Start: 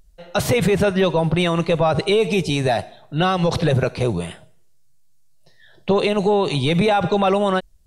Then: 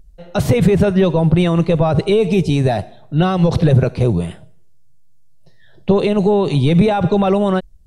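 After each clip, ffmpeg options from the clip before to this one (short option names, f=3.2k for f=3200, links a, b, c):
-af "lowshelf=f=470:g=12,volume=-3.5dB"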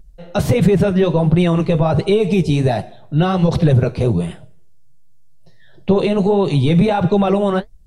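-filter_complex "[0:a]flanger=delay=5.2:depth=8.2:regen=-47:speed=1.4:shape=sinusoidal,asplit=2[a][b];[b]alimiter=limit=-14dB:level=0:latency=1:release=222,volume=-3dB[c];[a][c]amix=inputs=2:normalize=0"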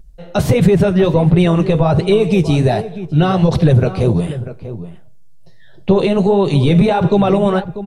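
-filter_complex "[0:a]asplit=2[a][b];[b]adelay=641.4,volume=-13dB,highshelf=f=4k:g=-14.4[c];[a][c]amix=inputs=2:normalize=0,volume=2dB"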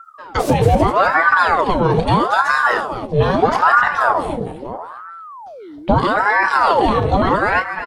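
-af "aecho=1:1:32.07|250.7:0.316|0.316,aeval=exprs='val(0)*sin(2*PI*820*n/s+820*0.65/0.78*sin(2*PI*0.78*n/s))':c=same"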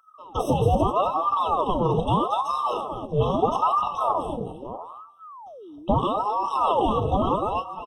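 -af "afftfilt=real='re*eq(mod(floor(b*sr/1024/1300),2),0)':imag='im*eq(mod(floor(b*sr/1024/1300),2),0)':win_size=1024:overlap=0.75,volume=-7dB"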